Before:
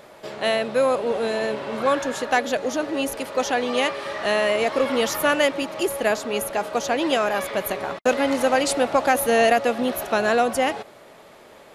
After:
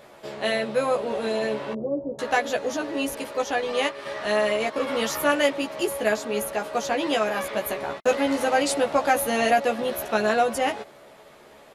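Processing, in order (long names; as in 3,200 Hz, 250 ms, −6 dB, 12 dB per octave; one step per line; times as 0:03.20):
0:01.73–0:02.19: inverse Chebyshev low-pass filter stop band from 1,800 Hz, stop band 60 dB
0:03.28–0:04.87: transient designer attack −2 dB, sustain −7 dB
double-tracking delay 14 ms −3 dB
level −4 dB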